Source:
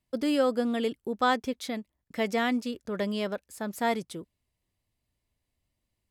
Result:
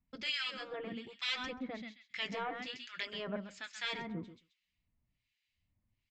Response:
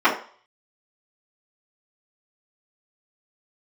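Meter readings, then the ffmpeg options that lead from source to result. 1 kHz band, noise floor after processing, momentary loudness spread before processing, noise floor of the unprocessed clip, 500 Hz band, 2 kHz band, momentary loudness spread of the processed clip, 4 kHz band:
−14.0 dB, −85 dBFS, 12 LU, −83 dBFS, −15.5 dB, −5.0 dB, 9 LU, 0.0 dB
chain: -filter_complex "[0:a]asplit=2[link_01][link_02];[1:a]atrim=start_sample=2205[link_03];[link_02][link_03]afir=irnorm=-1:irlink=0,volume=-39.5dB[link_04];[link_01][link_04]amix=inputs=2:normalize=0,asoftclip=type=tanh:threshold=-14dB,firequalizer=gain_entry='entry(220,0);entry(400,-12);entry(2300,7);entry(6100,-4)':delay=0.05:min_phase=1,aresample=16000,aresample=44100,aecho=1:1:133|266|399:0.335|0.0703|0.0148,afftfilt=real='re*lt(hypot(re,im),0.141)':imag='im*lt(hypot(re,im),0.141)':win_size=1024:overlap=0.75,flanger=delay=4.1:depth=6.6:regen=-41:speed=0.62:shape=sinusoidal,acrossover=split=1400[link_05][link_06];[link_05]aeval=exprs='val(0)*(1-1/2+1/2*cos(2*PI*1.2*n/s))':channel_layout=same[link_07];[link_06]aeval=exprs='val(0)*(1-1/2-1/2*cos(2*PI*1.2*n/s))':channel_layout=same[link_08];[link_07][link_08]amix=inputs=2:normalize=0,volume=6dB"

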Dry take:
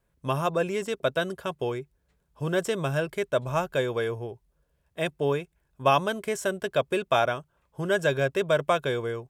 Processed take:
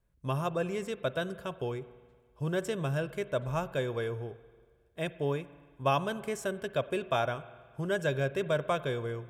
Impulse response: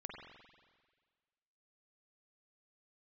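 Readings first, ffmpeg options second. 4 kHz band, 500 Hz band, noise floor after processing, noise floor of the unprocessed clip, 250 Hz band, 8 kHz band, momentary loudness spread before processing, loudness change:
−7.0 dB, −6.0 dB, −66 dBFS, −73 dBFS, −4.0 dB, −7.0 dB, 10 LU, −5.5 dB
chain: -filter_complex "[0:a]lowshelf=frequency=160:gain=9,asplit=2[link_01][link_02];[1:a]atrim=start_sample=2205,asetrate=42336,aresample=44100[link_03];[link_02][link_03]afir=irnorm=-1:irlink=0,volume=-8.5dB[link_04];[link_01][link_04]amix=inputs=2:normalize=0,volume=-8.5dB"

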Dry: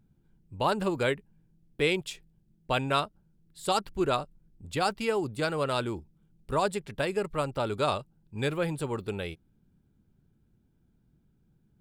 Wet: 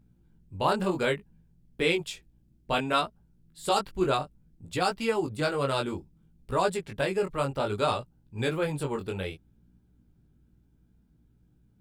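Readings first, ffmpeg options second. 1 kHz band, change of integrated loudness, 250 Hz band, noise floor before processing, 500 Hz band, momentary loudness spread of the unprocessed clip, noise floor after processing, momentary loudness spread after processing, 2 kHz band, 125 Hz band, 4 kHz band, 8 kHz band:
+1.0 dB, +1.0 dB, +1.0 dB, −69 dBFS, +1.0 dB, 12 LU, −64 dBFS, 11 LU, +1.0 dB, +0.5 dB, +1.0 dB, +1.0 dB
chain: -af "flanger=delay=16.5:depth=5.5:speed=0.61,aeval=exprs='val(0)+0.000398*(sin(2*PI*60*n/s)+sin(2*PI*2*60*n/s)/2+sin(2*PI*3*60*n/s)/3+sin(2*PI*4*60*n/s)/4+sin(2*PI*5*60*n/s)/5)':channel_layout=same,volume=4dB"

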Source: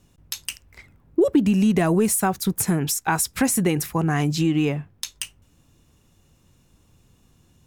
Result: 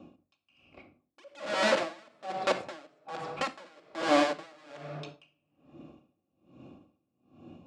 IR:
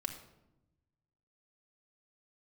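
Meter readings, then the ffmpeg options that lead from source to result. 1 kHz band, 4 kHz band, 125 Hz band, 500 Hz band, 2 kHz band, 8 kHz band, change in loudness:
−4.5 dB, −5.0 dB, −25.0 dB, −6.5 dB, −4.5 dB, −22.0 dB, −9.5 dB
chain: -filter_complex "[0:a]acrossover=split=450[link_01][link_02];[link_01]aeval=exprs='(mod(14.1*val(0)+1,2)-1)/14.1':channel_layout=same[link_03];[link_02]asplit=3[link_04][link_05][link_06];[link_04]bandpass=frequency=730:width_type=q:width=8,volume=0dB[link_07];[link_05]bandpass=frequency=1090:width_type=q:width=8,volume=-6dB[link_08];[link_06]bandpass=frequency=2440:width_type=q:width=8,volume=-9dB[link_09];[link_07][link_08][link_09]amix=inputs=3:normalize=0[link_10];[link_03][link_10]amix=inputs=2:normalize=0,highpass=280,equalizer=frequency=350:width_type=q:width=4:gain=4,equalizer=frequency=600:width_type=q:width=4:gain=8,equalizer=frequency=6100:width_type=q:width=4:gain=-5,lowpass=frequency=6900:width=0.5412,lowpass=frequency=6900:width=1.3066[link_11];[1:a]atrim=start_sample=2205[link_12];[link_11][link_12]afir=irnorm=-1:irlink=0,areverse,acompressor=mode=upward:threshold=-38dB:ratio=2.5,areverse,aeval=exprs='val(0)*pow(10,-32*(0.5-0.5*cos(2*PI*1.2*n/s))/20)':channel_layout=same,volume=3dB"

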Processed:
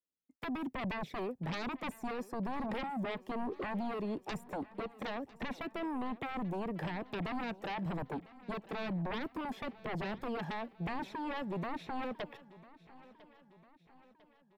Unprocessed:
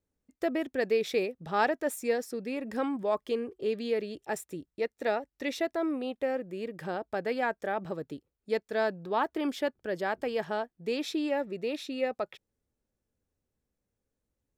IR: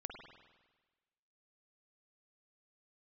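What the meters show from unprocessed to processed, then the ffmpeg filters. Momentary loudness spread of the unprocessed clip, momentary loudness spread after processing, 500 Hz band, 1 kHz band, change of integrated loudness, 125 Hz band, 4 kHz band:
8 LU, 6 LU, −12.0 dB, −5.5 dB, −7.5 dB, +5.5 dB, −6.5 dB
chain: -filter_complex "[0:a]agate=range=-33dB:threshold=-48dB:ratio=3:detection=peak,acrossover=split=2500[link_01][link_02];[link_02]acompressor=threshold=-57dB:ratio=4:attack=1:release=60[link_03];[link_01][link_03]amix=inputs=2:normalize=0,aphaser=in_gain=1:out_gain=1:delay=1.2:decay=0.48:speed=1.1:type=sinusoidal,highshelf=frequency=11000:gain=7.5,acrossover=split=210|3000[link_04][link_05][link_06];[link_05]acompressor=threshold=-40dB:ratio=6[link_07];[link_04][link_07][link_06]amix=inputs=3:normalize=0,acrossover=split=140|1600[link_08][link_09][link_10];[link_09]aeval=exprs='0.0398*sin(PI/2*4.47*val(0)/0.0398)':channel_layout=same[link_11];[link_08][link_11][link_10]amix=inputs=3:normalize=0,equalizer=frequency=1400:width=2:gain=-6,asplit=2[link_12][link_13];[link_13]aecho=0:1:1000|2000|3000|4000:0.106|0.0551|0.0286|0.0149[link_14];[link_12][link_14]amix=inputs=2:normalize=0,volume=-5.5dB"

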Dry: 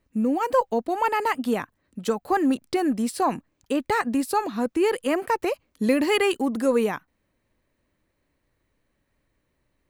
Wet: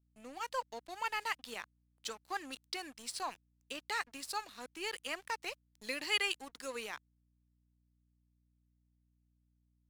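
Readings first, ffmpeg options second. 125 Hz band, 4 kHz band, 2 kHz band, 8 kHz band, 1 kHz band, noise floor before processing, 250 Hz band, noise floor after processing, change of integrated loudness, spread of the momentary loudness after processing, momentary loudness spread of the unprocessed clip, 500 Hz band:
below −25 dB, −4.0 dB, −8.0 dB, −7.0 dB, −16.0 dB, −74 dBFS, −28.5 dB, −76 dBFS, −15.0 dB, 12 LU, 7 LU, −22.5 dB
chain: -af "bandpass=frequency=4500:width_type=q:width=0.97:csg=0,aeval=exprs='sgn(val(0))*max(abs(val(0))-0.00299,0)':channel_layout=same,aeval=exprs='val(0)+0.000224*(sin(2*PI*60*n/s)+sin(2*PI*2*60*n/s)/2+sin(2*PI*3*60*n/s)/3+sin(2*PI*4*60*n/s)/4+sin(2*PI*5*60*n/s)/5)':channel_layout=same,volume=-1dB"

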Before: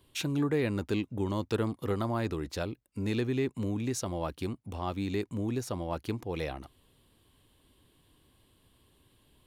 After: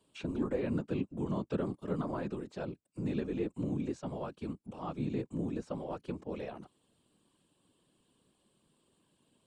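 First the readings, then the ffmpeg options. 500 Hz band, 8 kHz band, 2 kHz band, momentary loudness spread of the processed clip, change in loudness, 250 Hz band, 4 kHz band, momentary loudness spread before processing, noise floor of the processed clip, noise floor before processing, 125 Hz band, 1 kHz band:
−4.5 dB, below −15 dB, −9.5 dB, 8 LU, −4.5 dB, −3.0 dB, −13.0 dB, 7 LU, −75 dBFS, −68 dBFS, −5.5 dB, −6.0 dB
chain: -filter_complex "[0:a]acrossover=split=3500[link_01][link_02];[link_02]acompressor=threshold=-60dB:ratio=4:attack=1:release=60[link_03];[link_01][link_03]amix=inputs=2:normalize=0,highpass=frequency=150:width=0.5412,highpass=frequency=150:width=1.3066,equalizer=frequency=200:width_type=q:width=4:gain=9,equalizer=frequency=530:width_type=q:width=4:gain=3,equalizer=frequency=2000:width_type=q:width=4:gain=-7,equalizer=frequency=3600:width_type=q:width=4:gain=-3,equalizer=frequency=7900:width_type=q:width=4:gain=8,lowpass=frequency=9300:width=0.5412,lowpass=frequency=9300:width=1.3066,afftfilt=real='hypot(re,im)*cos(2*PI*random(0))':imag='hypot(re,im)*sin(2*PI*random(1))':win_size=512:overlap=0.75"

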